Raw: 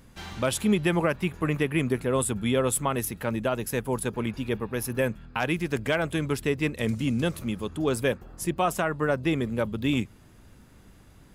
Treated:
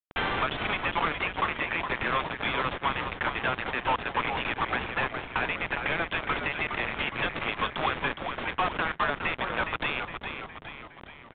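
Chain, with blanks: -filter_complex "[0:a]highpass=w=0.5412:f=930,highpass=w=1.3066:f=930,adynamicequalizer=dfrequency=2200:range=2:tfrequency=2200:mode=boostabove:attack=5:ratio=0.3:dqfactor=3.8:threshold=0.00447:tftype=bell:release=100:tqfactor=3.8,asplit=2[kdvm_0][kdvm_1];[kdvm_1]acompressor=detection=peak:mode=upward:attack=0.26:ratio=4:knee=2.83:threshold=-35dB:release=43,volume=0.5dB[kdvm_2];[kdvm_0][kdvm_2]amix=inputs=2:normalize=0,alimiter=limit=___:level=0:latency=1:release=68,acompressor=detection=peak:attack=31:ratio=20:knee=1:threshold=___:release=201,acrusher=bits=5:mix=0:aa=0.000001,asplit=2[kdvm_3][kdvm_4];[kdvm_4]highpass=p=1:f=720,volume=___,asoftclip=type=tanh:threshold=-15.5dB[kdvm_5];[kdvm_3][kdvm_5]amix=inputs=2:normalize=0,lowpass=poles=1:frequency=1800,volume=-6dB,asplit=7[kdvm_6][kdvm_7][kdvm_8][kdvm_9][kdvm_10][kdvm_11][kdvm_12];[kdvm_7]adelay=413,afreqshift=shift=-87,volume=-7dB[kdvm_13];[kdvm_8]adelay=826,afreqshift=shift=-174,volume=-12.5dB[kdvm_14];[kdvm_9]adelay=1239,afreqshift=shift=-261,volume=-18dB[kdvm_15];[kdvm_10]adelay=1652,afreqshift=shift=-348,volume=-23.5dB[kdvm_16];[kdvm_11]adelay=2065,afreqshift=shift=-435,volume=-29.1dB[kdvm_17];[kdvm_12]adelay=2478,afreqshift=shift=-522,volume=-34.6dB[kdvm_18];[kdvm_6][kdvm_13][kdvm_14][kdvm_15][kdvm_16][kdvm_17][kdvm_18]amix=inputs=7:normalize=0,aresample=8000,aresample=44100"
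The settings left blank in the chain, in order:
-12.5dB, -37dB, 34dB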